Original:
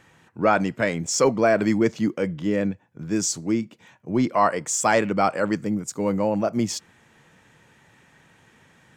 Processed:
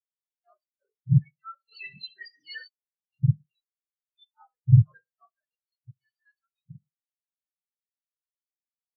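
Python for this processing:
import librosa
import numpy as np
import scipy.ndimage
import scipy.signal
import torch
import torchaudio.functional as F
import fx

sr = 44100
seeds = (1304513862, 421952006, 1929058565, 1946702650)

p1 = fx.octave_mirror(x, sr, pivot_hz=950.0)
p2 = p1 + fx.echo_feedback(p1, sr, ms=67, feedback_pct=47, wet_db=-12.0, dry=0)
p3 = fx.rev_gated(p2, sr, seeds[0], gate_ms=350, shape='falling', drr_db=11.0)
p4 = fx.leveller(p3, sr, passes=5, at=(1.72, 2.68))
y = fx.spectral_expand(p4, sr, expansion=4.0)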